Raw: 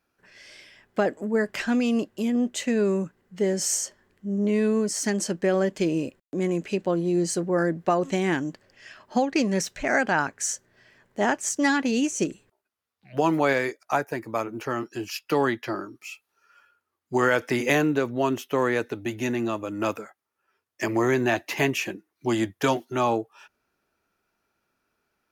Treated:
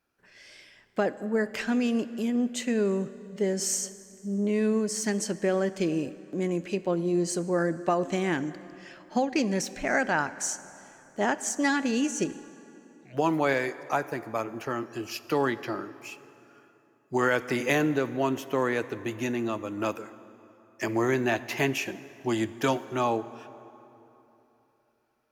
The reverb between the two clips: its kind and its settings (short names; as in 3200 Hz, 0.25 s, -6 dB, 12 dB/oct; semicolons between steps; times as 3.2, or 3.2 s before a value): plate-style reverb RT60 3.3 s, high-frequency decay 0.65×, DRR 14.5 dB; gain -3 dB